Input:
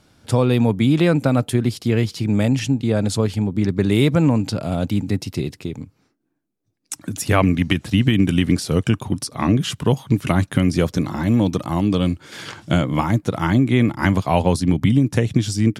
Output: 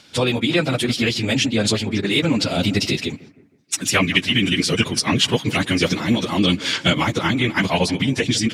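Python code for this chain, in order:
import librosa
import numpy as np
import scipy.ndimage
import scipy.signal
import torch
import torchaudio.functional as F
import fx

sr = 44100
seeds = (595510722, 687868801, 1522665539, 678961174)

y = fx.peak_eq(x, sr, hz=11000.0, db=-3.5, octaves=0.3)
y = fx.echo_bbd(y, sr, ms=293, stages=4096, feedback_pct=42, wet_db=-18.5)
y = fx.rider(y, sr, range_db=5, speed_s=0.5)
y = fx.stretch_vocoder_free(y, sr, factor=0.54)
y = fx.weighting(y, sr, curve='D')
y = y * 10.0 ** (3.5 / 20.0)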